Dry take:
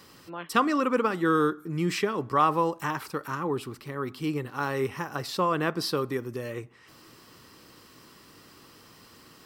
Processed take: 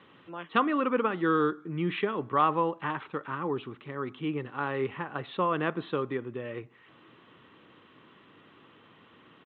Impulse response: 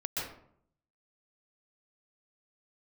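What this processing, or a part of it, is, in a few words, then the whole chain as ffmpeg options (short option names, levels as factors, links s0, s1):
Bluetooth headset: -af "highpass=120,aresample=8000,aresample=44100,volume=0.794" -ar 16000 -c:a sbc -b:a 64k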